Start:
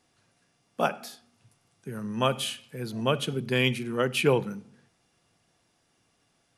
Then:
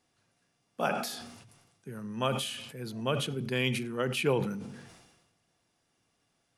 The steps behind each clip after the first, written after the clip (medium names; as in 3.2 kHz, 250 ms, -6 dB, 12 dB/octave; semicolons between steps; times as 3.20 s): decay stretcher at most 48 dB/s; trim -5.5 dB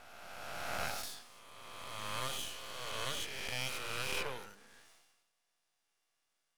reverse spectral sustain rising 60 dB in 2.37 s; Bessel high-pass 870 Hz, order 2; half-wave rectifier; trim -5 dB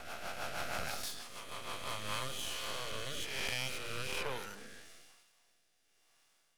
compression 2.5:1, threshold -48 dBFS, peak gain reduction 11.5 dB; rotary cabinet horn 6.3 Hz, later 1.1 Hz, at 1.60 s; trim +12.5 dB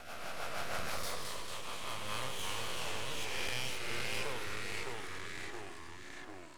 ever faster or slower copies 89 ms, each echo -2 st, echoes 3; trim -2 dB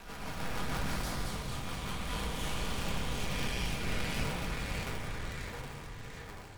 cycle switcher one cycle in 3, inverted; reverberation RT60 1.9 s, pre-delay 4 ms, DRR 2 dB; trim -2.5 dB